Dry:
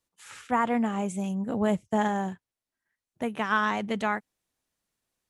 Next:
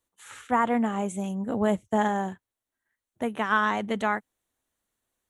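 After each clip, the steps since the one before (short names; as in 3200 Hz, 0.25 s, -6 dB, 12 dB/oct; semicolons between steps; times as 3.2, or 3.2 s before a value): thirty-one-band EQ 160 Hz -10 dB, 2500 Hz -4 dB, 5000 Hz -11 dB; gain +2 dB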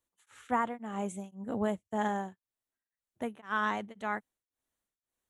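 beating tremolo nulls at 1.9 Hz; gain -5.5 dB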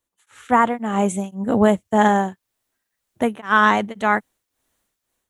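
AGC gain up to 11 dB; gain +5 dB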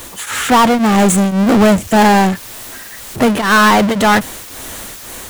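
power-law curve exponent 0.35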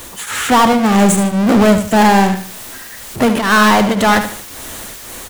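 feedback echo 75 ms, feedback 33%, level -9.5 dB; gain -1 dB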